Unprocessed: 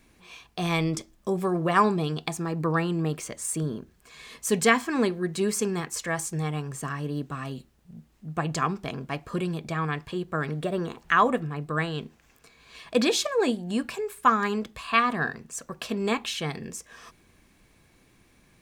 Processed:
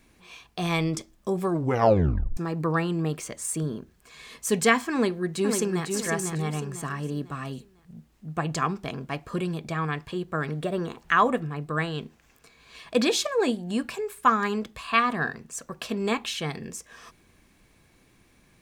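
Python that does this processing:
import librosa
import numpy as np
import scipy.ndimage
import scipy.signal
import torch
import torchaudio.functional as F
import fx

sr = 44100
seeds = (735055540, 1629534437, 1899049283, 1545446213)

y = fx.echo_throw(x, sr, start_s=4.94, length_s=0.97, ms=500, feedback_pct=35, wet_db=-5.0)
y = fx.edit(y, sr, fx.tape_stop(start_s=1.49, length_s=0.88), tone=tone)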